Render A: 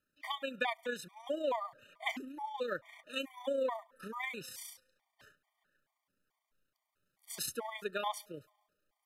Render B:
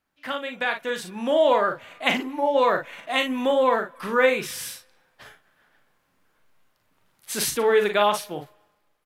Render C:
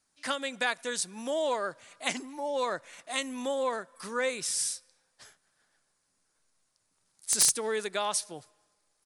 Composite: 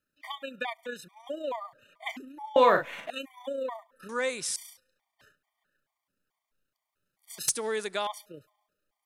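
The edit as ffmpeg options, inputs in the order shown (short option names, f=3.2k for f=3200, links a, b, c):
-filter_complex "[2:a]asplit=2[a][b];[0:a]asplit=4[c][d][e][f];[c]atrim=end=2.562[g];[1:a]atrim=start=2.558:end=3.102[h];[d]atrim=start=3.098:end=4.092[i];[a]atrim=start=4.088:end=4.562[j];[e]atrim=start=4.558:end=7.482[k];[b]atrim=start=7.478:end=8.072[l];[f]atrim=start=8.068[m];[g][h]acrossfade=d=0.004:c1=hsin:c2=hsin[n];[n][i]acrossfade=d=0.004:c1=hsin:c2=hsin[o];[o][j]acrossfade=d=0.004:c1=hsin:c2=hsin[p];[p][k]acrossfade=d=0.004:c1=hsin:c2=hsin[q];[q][l]acrossfade=d=0.004:c1=hsin:c2=hsin[r];[r][m]acrossfade=d=0.004:c1=hsin:c2=hsin"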